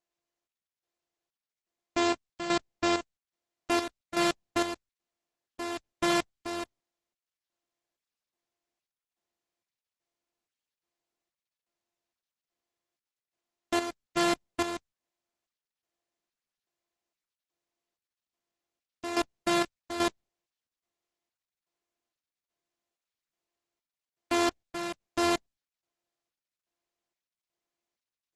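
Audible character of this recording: a buzz of ramps at a fixed pitch in blocks of 128 samples; chopped level 1.2 Hz, depth 65%, duty 55%; Opus

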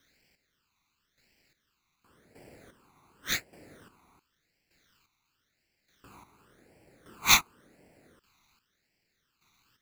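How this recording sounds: a quantiser's noise floor 12-bit, dither triangular; chopped level 0.85 Hz, depth 65%, duty 30%; aliases and images of a low sample rate 9.7 kHz, jitter 0%; phasing stages 12, 0.92 Hz, lowest notch 530–1200 Hz

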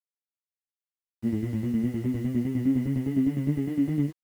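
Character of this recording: tremolo saw down 9.8 Hz, depth 65%; a quantiser's noise floor 10-bit, dither none; a shimmering, thickened sound

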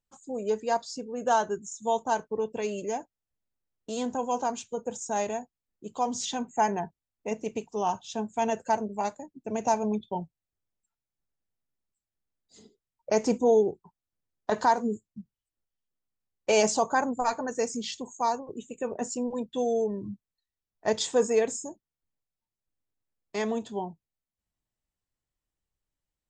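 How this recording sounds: noise floor -91 dBFS; spectral tilt -3.5 dB/octave

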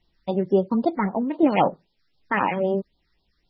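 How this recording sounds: tremolo saw down 1.4 Hz, depth 35%; a quantiser's noise floor 12-bit, dither triangular; phasing stages 6, 3.8 Hz, lowest notch 670–2100 Hz; MP3

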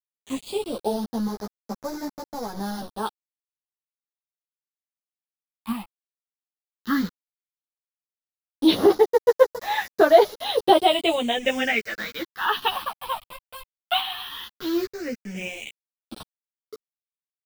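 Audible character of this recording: a quantiser's noise floor 6-bit, dither none; phasing stages 6, 0.13 Hz, lowest notch 450–2800 Hz; random-step tremolo; a shimmering, thickened sound

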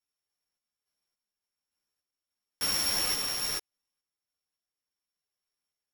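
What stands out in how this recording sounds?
a buzz of ramps at a fixed pitch in blocks of 8 samples; random-step tremolo; a shimmering, thickened sound

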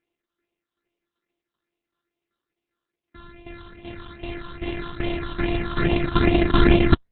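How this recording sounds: a buzz of ramps at a fixed pitch in blocks of 128 samples; tremolo saw down 2.6 Hz, depth 75%; phasing stages 6, 2.4 Hz, lowest notch 580–1400 Hz; Opus

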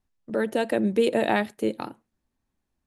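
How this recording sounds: noise floor -80 dBFS; spectral tilt -4.0 dB/octave

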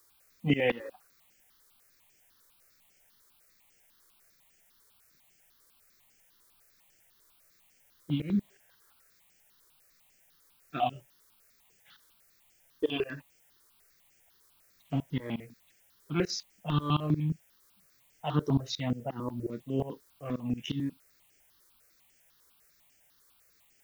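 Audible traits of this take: tremolo saw up 5.6 Hz, depth 95%; a quantiser's noise floor 12-bit, dither triangular; notches that jump at a steady rate 10 Hz 730–3800 Hz

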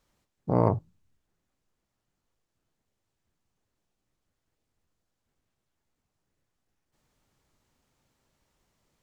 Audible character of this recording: noise floor -83 dBFS; spectral tilt -4.0 dB/octave

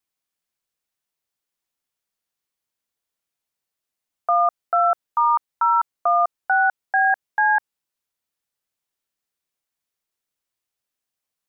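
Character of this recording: noise floor -85 dBFS; spectral tilt -1.0 dB/octave

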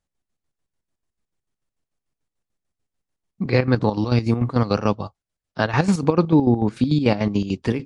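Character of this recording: chopped level 6.8 Hz, depth 65%, duty 50%; MP3

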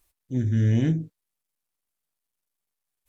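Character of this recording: noise floor -84 dBFS; spectral tilt -9.5 dB/octave

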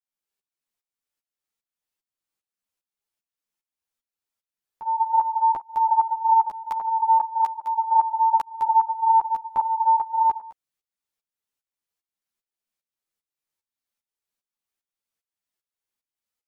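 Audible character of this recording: tremolo saw up 2.5 Hz, depth 85%; a shimmering, thickened sound

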